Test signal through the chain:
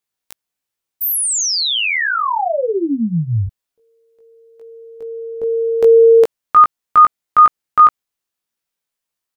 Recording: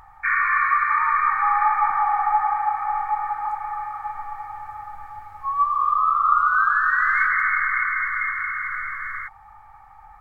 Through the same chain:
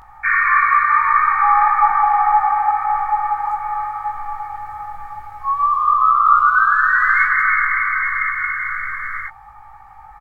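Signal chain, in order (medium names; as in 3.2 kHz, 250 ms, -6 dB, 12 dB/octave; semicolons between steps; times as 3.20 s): doubling 18 ms -2.5 dB; trim +3.5 dB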